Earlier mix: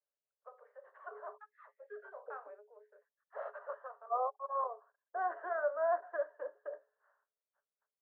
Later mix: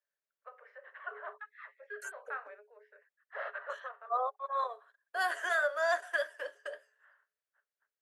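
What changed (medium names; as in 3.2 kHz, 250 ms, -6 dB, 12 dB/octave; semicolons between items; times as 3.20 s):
first voice: add low-pass 2 kHz 24 dB/octave; master: remove low-pass 1.1 kHz 24 dB/octave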